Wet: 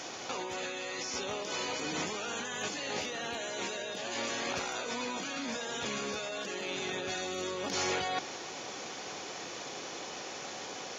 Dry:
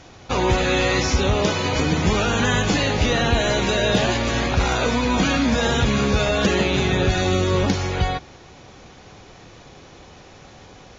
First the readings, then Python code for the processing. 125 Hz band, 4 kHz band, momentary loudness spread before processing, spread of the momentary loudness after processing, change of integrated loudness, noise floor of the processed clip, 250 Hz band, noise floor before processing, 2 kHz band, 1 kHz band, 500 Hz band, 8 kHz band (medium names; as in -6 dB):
-29.0 dB, -11.5 dB, 3 LU, 7 LU, -16.0 dB, -43 dBFS, -19.5 dB, -45 dBFS, -13.5 dB, -13.5 dB, -15.5 dB, no reading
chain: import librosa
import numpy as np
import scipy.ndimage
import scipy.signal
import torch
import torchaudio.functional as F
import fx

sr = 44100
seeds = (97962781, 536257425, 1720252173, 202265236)

y = scipy.signal.sosfilt(scipy.signal.butter(2, 310.0, 'highpass', fs=sr, output='sos'), x)
y = fx.high_shelf(y, sr, hz=5700.0, db=12.0)
y = fx.notch(y, sr, hz=3900.0, q=19.0)
y = fx.over_compress(y, sr, threshold_db=-31.0, ratio=-1.0)
y = y * librosa.db_to_amplitude(-5.5)